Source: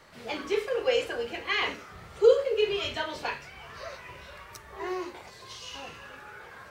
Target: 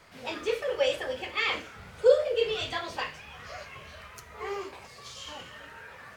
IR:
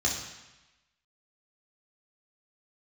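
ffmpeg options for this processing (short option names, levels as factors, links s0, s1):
-filter_complex "[0:a]flanger=delay=0.2:depth=8.9:regen=-75:speed=1.6:shape=triangular,asetrate=48000,aresample=44100,asplit=2[s0][s1];[1:a]atrim=start_sample=2205[s2];[s1][s2]afir=irnorm=-1:irlink=0,volume=0.0501[s3];[s0][s3]amix=inputs=2:normalize=0,volume=1.58"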